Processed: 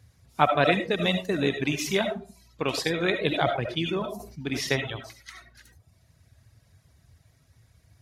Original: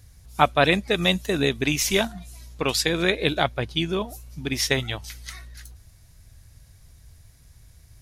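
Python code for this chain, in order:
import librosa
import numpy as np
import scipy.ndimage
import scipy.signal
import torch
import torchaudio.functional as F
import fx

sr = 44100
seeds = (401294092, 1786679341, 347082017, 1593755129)

y = scipy.signal.sosfilt(scipy.signal.butter(4, 78.0, 'highpass', fs=sr, output='sos'), x)
y = fx.high_shelf(y, sr, hz=5100.0, db=-11.0)
y = fx.rev_freeverb(y, sr, rt60_s=0.47, hf_ratio=0.4, predelay_ms=35, drr_db=3.0)
y = fx.dereverb_blind(y, sr, rt60_s=0.63)
y = fx.sustainer(y, sr, db_per_s=71.0, at=(3.31, 4.75), fade=0.02)
y = y * librosa.db_to_amplitude(-2.5)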